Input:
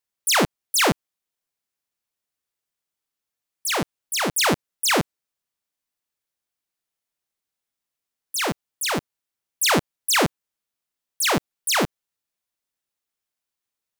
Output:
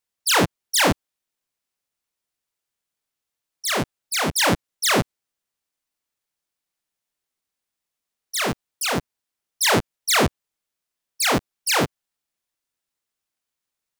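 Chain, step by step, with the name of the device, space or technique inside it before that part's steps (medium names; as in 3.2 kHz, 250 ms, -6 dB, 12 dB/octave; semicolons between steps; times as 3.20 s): octave pedal (harmony voices -12 st -5 dB)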